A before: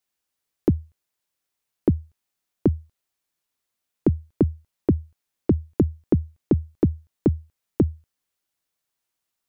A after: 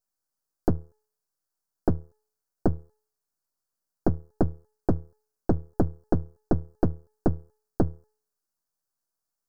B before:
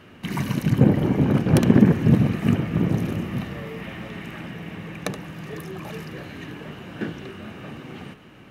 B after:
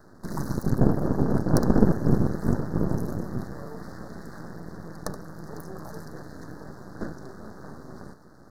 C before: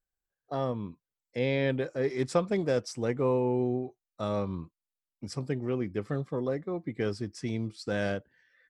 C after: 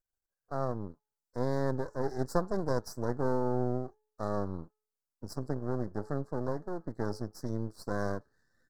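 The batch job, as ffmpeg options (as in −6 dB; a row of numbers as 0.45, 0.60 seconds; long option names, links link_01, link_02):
-af "bandreject=frequency=428:width_type=h:width=4,bandreject=frequency=856:width_type=h:width=4,bandreject=frequency=1284:width_type=h:width=4,bandreject=frequency=1712:width_type=h:width=4,bandreject=frequency=2140:width_type=h:width=4,bandreject=frequency=2568:width_type=h:width=4,bandreject=frequency=2996:width_type=h:width=4,bandreject=frequency=3424:width_type=h:width=4,bandreject=frequency=3852:width_type=h:width=4,aeval=exprs='max(val(0),0)':channel_layout=same,asuperstop=centerf=2700:order=8:qfactor=1"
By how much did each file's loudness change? −5.0, −5.0, −3.5 LU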